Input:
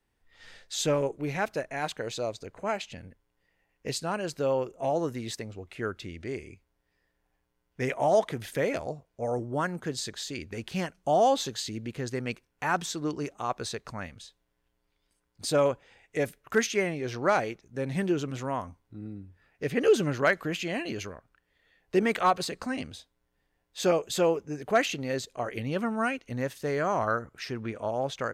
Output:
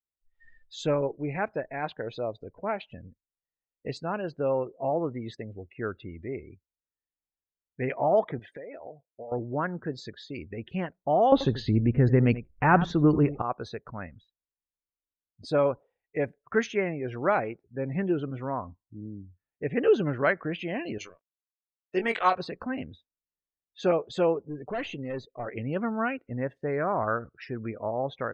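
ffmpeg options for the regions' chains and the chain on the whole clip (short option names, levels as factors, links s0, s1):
-filter_complex "[0:a]asettb=1/sr,asplit=3[s0][s1][s2];[s0]atrim=end=8.394[s3];[s1]atrim=start=8.39:end=9.32,asetpts=PTS-STARTPTS,afade=t=in:d=0.004:c=qsin,afade=t=out:st=0.926:d=0.004:c=qsin,bass=f=250:g=-11,treble=f=4000:g=1,acompressor=threshold=0.0158:ratio=20:attack=3.2:release=140:knee=1:detection=peak[s4];[s2]atrim=start=9.316[s5];[s3][s4]acrossfade=d=0.004:c1=hsin:c2=qsin[s6];[s6][s5]acrossfade=d=0.004:c1=qsin:c2=hsin,asettb=1/sr,asplit=3[s7][s8][s9];[s7]atrim=end=11.324[s10];[s8]atrim=start=11.32:end=13.42,asetpts=PTS-STARTPTS,afade=t=in:d=0.004:c=qsin,afade=t=out:st=2.096:d=0.004:c=qsin,aemphasis=mode=reproduction:type=bsi,acontrast=77,aecho=1:1:85:0.178,atrim=end_sample=92610[s11];[s9]atrim=start=13.416[s12];[s10][s11]acrossfade=d=0.004:c1=hsin:c2=qsin[s13];[s13][s12]acrossfade=d=0.004:c1=qsin:c2=hsin,asettb=1/sr,asplit=3[s14][s15][s16];[s14]atrim=end=20.984[s17];[s15]atrim=start=20.98:end=22.36,asetpts=PTS-STARTPTS,afade=t=in:d=0.004:c=qsin,afade=t=out:st=1.376:d=0.004:c=qsin,aemphasis=mode=production:type=riaa,aeval=exprs='sgn(val(0))*max(abs(val(0))-0.00596,0)':c=same,asplit=2[s18][s19];[s19]adelay=22,volume=0.473[s20];[s18][s20]amix=inputs=2:normalize=0,atrim=end_sample=60858[s21];[s16]atrim=start=22.356[s22];[s17][s21]acrossfade=d=0.004:c1=hsin:c2=qsin[s23];[s23][s22]acrossfade=d=0.004:c1=qsin:c2=hsin,asettb=1/sr,asplit=3[s24][s25][s26];[s24]atrim=end=24.404[s27];[s25]atrim=start=24.4:end=25.47,asetpts=PTS-STARTPTS,afade=t=in:d=0.004:c=qsin,afade=t=out:st=1.066:d=0.004:c=qsin,highshelf=f=11000:g=7,aeval=exprs='(tanh(25.1*val(0)+0.2)-tanh(0.2))/25.1':c=same[s28];[s26]atrim=start=25.466[s29];[s27][s28]acrossfade=d=0.004:c1=hsin:c2=qsin[s30];[s30][s29]acrossfade=d=0.004:c1=qsin:c2=hsin,lowpass=f=4000:p=1,aemphasis=mode=reproduction:type=cd,afftdn=nr=29:nf=-44"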